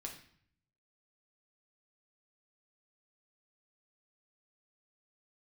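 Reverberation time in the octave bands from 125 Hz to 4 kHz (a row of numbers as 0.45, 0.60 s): 1.1, 0.85, 0.55, 0.60, 0.60, 0.55 s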